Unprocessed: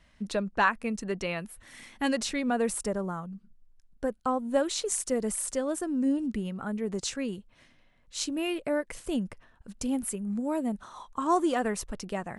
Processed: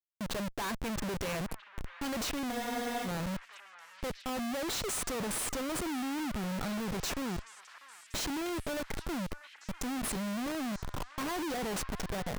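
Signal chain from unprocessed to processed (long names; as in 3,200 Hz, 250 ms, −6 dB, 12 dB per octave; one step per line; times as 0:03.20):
comparator with hysteresis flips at −38.5 dBFS
echo through a band-pass that steps 644 ms, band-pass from 1,400 Hz, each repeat 0.7 octaves, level −9 dB
frozen spectrum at 0:02.54, 0.52 s
level −3.5 dB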